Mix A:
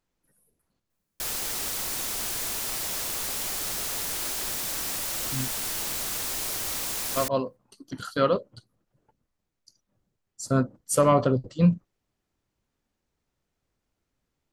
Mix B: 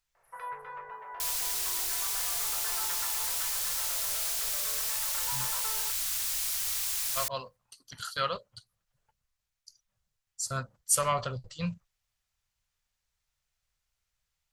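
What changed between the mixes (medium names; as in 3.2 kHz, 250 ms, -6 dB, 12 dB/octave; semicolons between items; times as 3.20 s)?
speech +4.0 dB; first sound: unmuted; master: add amplifier tone stack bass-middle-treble 10-0-10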